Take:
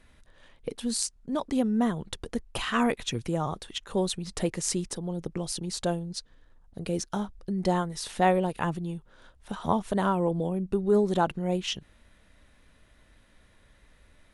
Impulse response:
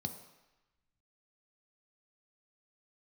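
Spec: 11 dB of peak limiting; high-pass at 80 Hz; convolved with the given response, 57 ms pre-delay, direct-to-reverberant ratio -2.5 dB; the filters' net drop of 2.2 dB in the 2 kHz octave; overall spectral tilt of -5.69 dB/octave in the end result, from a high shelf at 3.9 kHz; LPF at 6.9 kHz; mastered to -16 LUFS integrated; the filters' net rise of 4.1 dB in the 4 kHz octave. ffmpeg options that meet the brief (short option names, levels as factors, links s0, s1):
-filter_complex "[0:a]highpass=80,lowpass=6900,equalizer=f=2000:t=o:g=-5,highshelf=f=3900:g=4.5,equalizer=f=4000:t=o:g=4.5,alimiter=limit=0.106:level=0:latency=1,asplit=2[s0][s1];[1:a]atrim=start_sample=2205,adelay=57[s2];[s1][s2]afir=irnorm=-1:irlink=0,volume=1.41[s3];[s0][s3]amix=inputs=2:normalize=0,volume=1.68"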